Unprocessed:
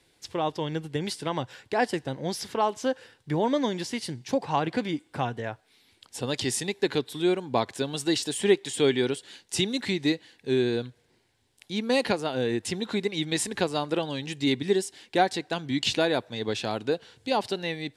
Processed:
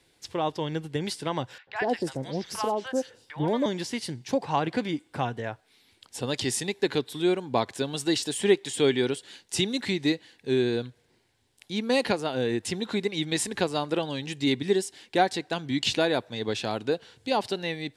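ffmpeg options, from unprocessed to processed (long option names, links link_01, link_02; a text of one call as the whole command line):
ffmpeg -i in.wav -filter_complex "[0:a]asettb=1/sr,asplit=3[link_01][link_02][link_03];[link_01]atrim=end=1.584[link_04];[link_02]atrim=start=1.58:end=3.66,asetpts=PTS-STARTPTS,afade=type=in:duration=0.004:curve=qsin,afade=type=out:start_time=2.076:duration=0.004:curve=qsin,acrossover=split=900|4000[link_05][link_06][link_07];[link_05]adelay=90[link_08];[link_07]adelay=180[link_09];[link_08][link_06][link_09]amix=inputs=3:normalize=0,atrim=end_sample=91728[link_10];[link_03]atrim=start=3.656[link_11];[link_04][link_10]acrossfade=duration=0.004:curve1=hsin:curve2=qsin[link_12];[link_12][link_11]acrossfade=duration=0.004:curve1=qsin:curve2=hsin" out.wav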